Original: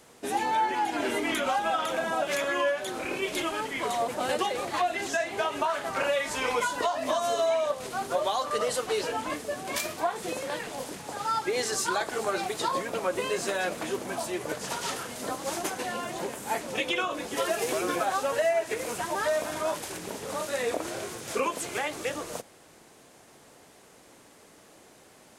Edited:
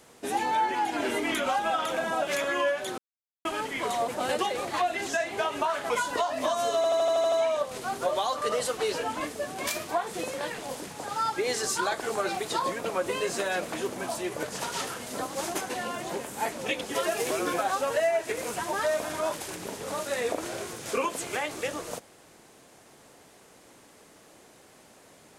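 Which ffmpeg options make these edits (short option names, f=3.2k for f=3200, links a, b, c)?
-filter_complex "[0:a]asplit=12[a][b][c][d][e][f][g][h][i][j][k][l];[a]atrim=end=2.98,asetpts=PTS-STARTPTS,afade=t=out:st=2.976:d=0.004:c=hsin[m];[b]atrim=start=2.98:end=3.45,asetpts=PTS-STARTPTS,volume=0[n];[c]atrim=start=3.45:end=5.902,asetpts=PTS-STARTPTS,afade=t=in:d=0.004:c=hsin[o];[d]atrim=start=6.548:end=7.492[p];[e]atrim=start=7.408:end=7.492[q];[f]atrim=start=7.408:end=7.492[r];[g]atrim=start=7.408:end=7.492[s];[h]atrim=start=7.408:end=7.492[t];[i]atrim=start=7.408:end=7.492[u];[j]atrim=start=7.408:end=7.492[v];[k]atrim=start=7.408:end=16.902[w];[l]atrim=start=17.228[x];[m][n][o]concat=n=3:v=0:a=1[y];[y][p]acrossfade=d=0.004:c1=hsin:c2=hsin[z];[z][q]acrossfade=d=0.004:c1=hsin:c2=hsin[aa];[aa][r]acrossfade=d=0.004:c1=hsin:c2=hsin[ab];[ab][s]acrossfade=d=0.004:c1=hsin:c2=hsin[ac];[ac][t]acrossfade=d=0.004:c1=hsin:c2=hsin[ad];[ad][u]acrossfade=d=0.004:c1=hsin:c2=hsin[ae];[ae][v]acrossfade=d=0.004:c1=hsin:c2=hsin[af];[af][w]acrossfade=d=0.004:c1=hsin:c2=hsin[ag];[ag][x]acrossfade=d=0.004:c1=hsin:c2=hsin"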